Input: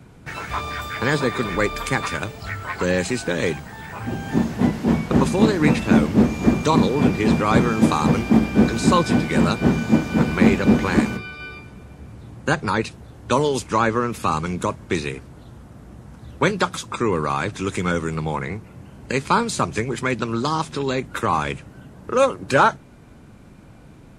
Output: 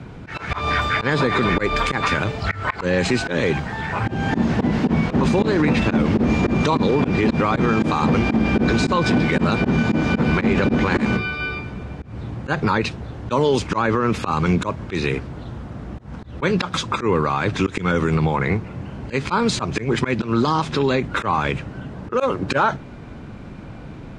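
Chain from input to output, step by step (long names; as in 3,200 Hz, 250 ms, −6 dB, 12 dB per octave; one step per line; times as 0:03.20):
low-pass filter 4,300 Hz 12 dB per octave
volume swells 158 ms
boost into a limiter +18 dB
level −8.5 dB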